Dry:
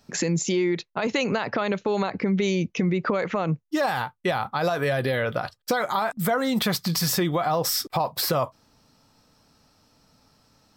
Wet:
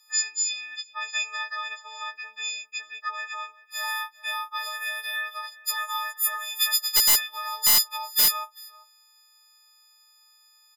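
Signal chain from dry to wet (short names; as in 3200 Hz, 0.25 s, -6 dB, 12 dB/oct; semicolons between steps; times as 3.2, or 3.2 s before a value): frequency quantiser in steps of 6 st; HPF 1100 Hz 24 dB/oct; outdoor echo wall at 67 m, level -19 dB; wrapped overs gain 3 dB; gain -6.5 dB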